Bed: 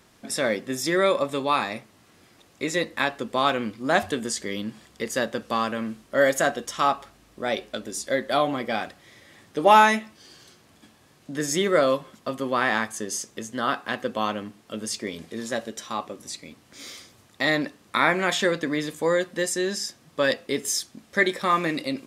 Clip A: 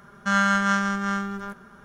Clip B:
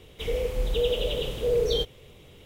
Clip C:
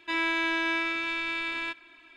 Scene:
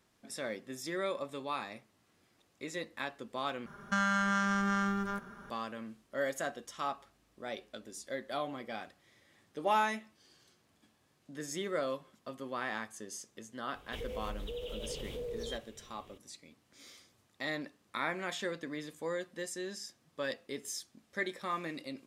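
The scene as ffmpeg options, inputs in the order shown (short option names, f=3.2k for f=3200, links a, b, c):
-filter_complex "[0:a]volume=-14.5dB[a];[1:a]acompressor=threshold=-23dB:ratio=6:attack=3.2:release=140:knee=1:detection=peak[b];[2:a]acompressor=threshold=-28dB:ratio=6:attack=3.2:release=140:knee=1:detection=peak[c];[a]asplit=2[d][e];[d]atrim=end=3.664[f];[b]atrim=end=1.84,asetpts=PTS-STARTPTS,volume=-2dB[g];[e]atrim=start=5.496[h];[c]atrim=end=2.45,asetpts=PTS-STARTPTS,volume=-9dB,afade=t=in:d=0.004:c=hsin,afade=t=out:st=2.446:d=0.004:c=hsin,adelay=13730[i];[f][g]acrossfade=d=0.004:c1=hsin:c2=hsin[j];[j][h]acrossfade=d=0.004:c1=hsin:c2=hsin[k];[k][i]amix=inputs=2:normalize=0"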